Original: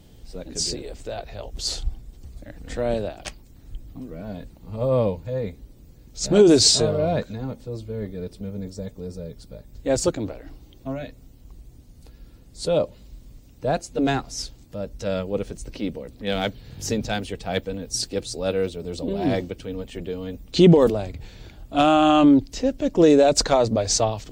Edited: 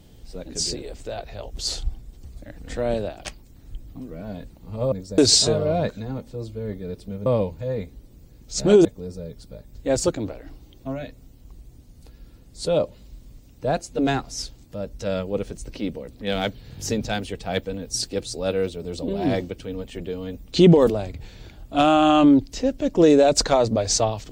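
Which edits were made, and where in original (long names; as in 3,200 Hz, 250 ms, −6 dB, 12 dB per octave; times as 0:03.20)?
0:04.92–0:06.51: swap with 0:08.59–0:08.85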